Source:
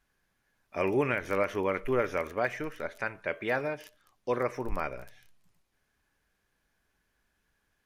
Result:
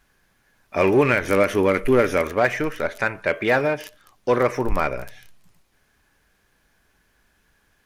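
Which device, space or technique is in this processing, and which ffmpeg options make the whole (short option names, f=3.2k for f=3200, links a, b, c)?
parallel distortion: -filter_complex "[0:a]asettb=1/sr,asplit=3[a][b][c];[a]atrim=end=1.284[d];[b]atrim=start=1.28:end=2.22,asetpts=PTS-STARTPTS,afade=t=in:d=0.004:c=qsin,afade=t=out:st=0.936:d=0.004:c=qsin,equalizer=f=250:t=o:w=0.67:g=4,equalizer=f=1k:t=o:w=0.67:g=-4,equalizer=f=10k:t=o:w=0.67:g=8[e];[c]atrim=start=2.216[f];[d][e]acrossfade=d=0.004:c1=hsin:c2=qsin[g];[g][f]acrossfade=d=0.004:c1=qsin:c2=hsin,asplit=2[h][i];[i]asoftclip=type=hard:threshold=-30dB,volume=-6dB[j];[h][j]amix=inputs=2:normalize=0,volume=8.5dB"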